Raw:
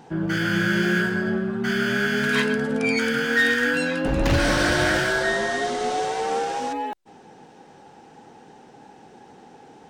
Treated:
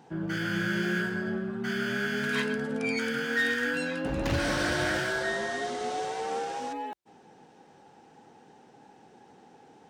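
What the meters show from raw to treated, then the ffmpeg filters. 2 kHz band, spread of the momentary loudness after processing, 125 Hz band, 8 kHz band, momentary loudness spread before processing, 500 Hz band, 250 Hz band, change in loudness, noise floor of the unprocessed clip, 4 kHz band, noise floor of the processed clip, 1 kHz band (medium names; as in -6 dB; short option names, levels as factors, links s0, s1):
-7.5 dB, 6 LU, -8.0 dB, -7.5 dB, 6 LU, -7.5 dB, -7.5 dB, -7.5 dB, -49 dBFS, -7.5 dB, -57 dBFS, -7.5 dB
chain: -af "highpass=55,volume=0.422"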